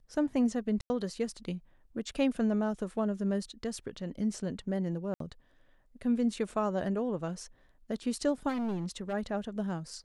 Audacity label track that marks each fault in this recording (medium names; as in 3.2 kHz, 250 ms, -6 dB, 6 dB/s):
0.810000	0.900000	dropout 90 ms
5.140000	5.200000	dropout 63 ms
8.480000	9.140000	clipped -30.5 dBFS